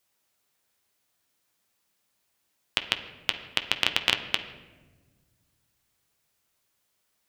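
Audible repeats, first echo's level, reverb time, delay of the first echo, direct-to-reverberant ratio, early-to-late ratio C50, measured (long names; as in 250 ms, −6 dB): no echo audible, no echo audible, 1.4 s, no echo audible, 6.0 dB, 10.5 dB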